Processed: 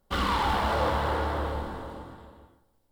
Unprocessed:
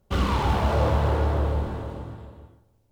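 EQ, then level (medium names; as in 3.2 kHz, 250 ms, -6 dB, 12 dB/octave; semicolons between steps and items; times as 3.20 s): peaking EQ 92 Hz -11 dB 2.6 oct; dynamic bell 2.4 kHz, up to +3 dB, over -40 dBFS, Q 0.73; graphic EQ with 31 bands 125 Hz -9 dB, 400 Hz -6 dB, 630 Hz -5 dB, 2.5 kHz -7 dB, 6.3 kHz -6 dB; +1.5 dB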